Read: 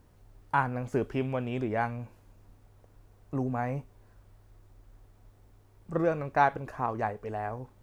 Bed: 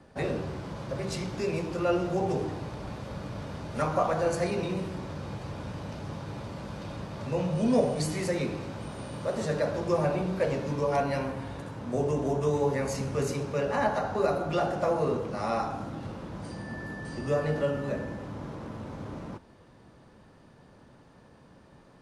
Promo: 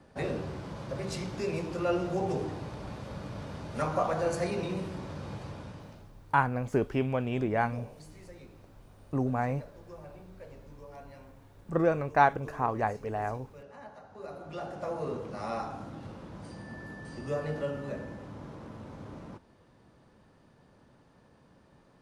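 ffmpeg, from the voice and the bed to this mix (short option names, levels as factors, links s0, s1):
-filter_complex "[0:a]adelay=5800,volume=1.19[s0];[1:a]volume=4.73,afade=t=out:st=5.38:d=0.74:silence=0.112202,afade=t=in:st=14.09:d=1.23:silence=0.158489[s1];[s0][s1]amix=inputs=2:normalize=0"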